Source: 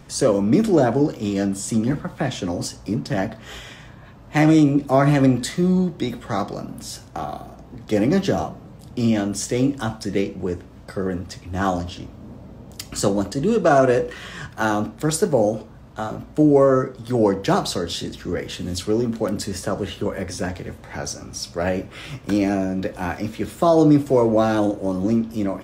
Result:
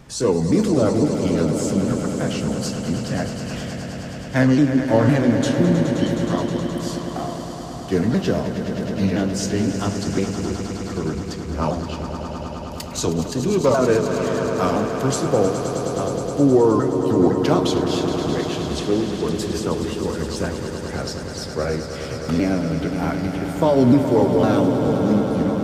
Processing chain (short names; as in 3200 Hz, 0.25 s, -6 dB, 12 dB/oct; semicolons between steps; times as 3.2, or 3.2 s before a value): repeated pitch sweeps -4 st, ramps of 0.509 s; swelling echo 0.105 s, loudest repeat 5, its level -11 dB